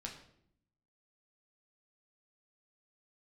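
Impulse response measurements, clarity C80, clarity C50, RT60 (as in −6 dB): 11.0 dB, 8.0 dB, 0.70 s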